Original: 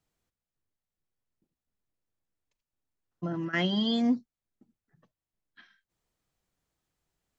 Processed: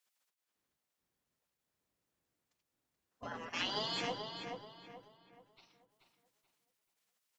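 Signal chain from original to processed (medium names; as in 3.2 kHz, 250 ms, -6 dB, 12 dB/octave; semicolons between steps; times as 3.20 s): spectral gate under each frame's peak -20 dB weak; filtered feedback delay 431 ms, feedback 37%, low-pass 3.3 kHz, level -5 dB; trim +5.5 dB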